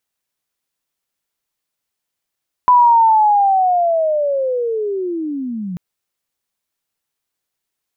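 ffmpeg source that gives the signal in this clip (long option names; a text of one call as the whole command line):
ffmpeg -f lavfi -i "aevalsrc='pow(10,(-6-16*t/3.09)/20)*sin(2*PI*(1000*t-830*t*t/(2*3.09)))':duration=3.09:sample_rate=44100" out.wav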